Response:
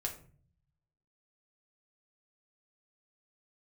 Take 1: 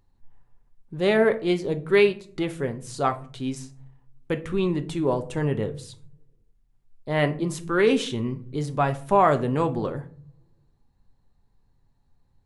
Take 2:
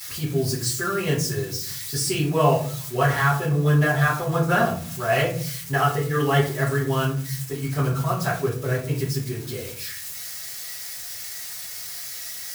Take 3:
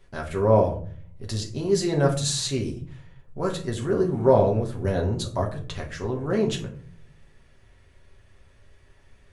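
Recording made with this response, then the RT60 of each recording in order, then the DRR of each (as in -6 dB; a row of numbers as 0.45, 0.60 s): 3; not exponential, 0.45 s, 0.45 s; 7.5, -8.5, -0.5 dB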